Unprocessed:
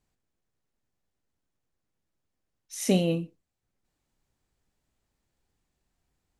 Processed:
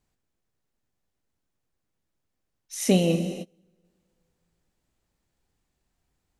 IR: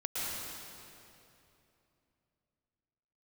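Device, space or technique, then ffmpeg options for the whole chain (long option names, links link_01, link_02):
keyed gated reverb: -filter_complex "[0:a]asplit=3[link_01][link_02][link_03];[1:a]atrim=start_sample=2205[link_04];[link_02][link_04]afir=irnorm=-1:irlink=0[link_05];[link_03]apad=whole_len=282219[link_06];[link_05][link_06]sidechaingate=range=-29dB:threshold=-56dB:ratio=16:detection=peak,volume=-12dB[link_07];[link_01][link_07]amix=inputs=2:normalize=0,volume=1.5dB"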